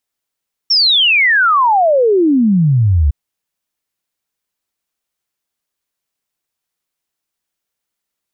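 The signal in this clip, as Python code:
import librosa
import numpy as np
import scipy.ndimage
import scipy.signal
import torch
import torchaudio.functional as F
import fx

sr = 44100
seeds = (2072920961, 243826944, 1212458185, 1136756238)

y = fx.ess(sr, length_s=2.41, from_hz=5600.0, to_hz=67.0, level_db=-8.0)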